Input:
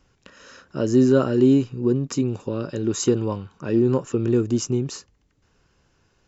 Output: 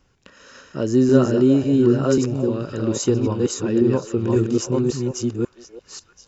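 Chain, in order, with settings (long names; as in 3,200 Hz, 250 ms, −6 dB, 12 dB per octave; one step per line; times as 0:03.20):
delay that plays each chunk backwards 545 ms, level −1.5 dB
echo through a band-pass that steps 341 ms, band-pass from 640 Hz, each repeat 1.4 octaves, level −8 dB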